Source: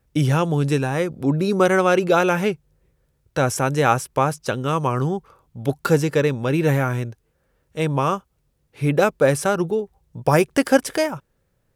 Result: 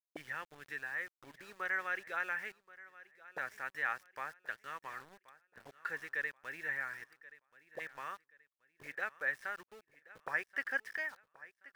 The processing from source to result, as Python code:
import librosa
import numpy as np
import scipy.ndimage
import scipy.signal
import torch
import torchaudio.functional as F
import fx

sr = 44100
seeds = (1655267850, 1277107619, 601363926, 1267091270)

y = fx.auto_wah(x, sr, base_hz=260.0, top_hz=1800.0, q=10.0, full_db=-23.0, direction='up')
y = np.where(np.abs(y) >= 10.0 ** (-52.5 / 20.0), y, 0.0)
y = fx.echo_feedback(y, sr, ms=1079, feedback_pct=31, wet_db=-19.0)
y = y * 10.0 ** (-1.5 / 20.0)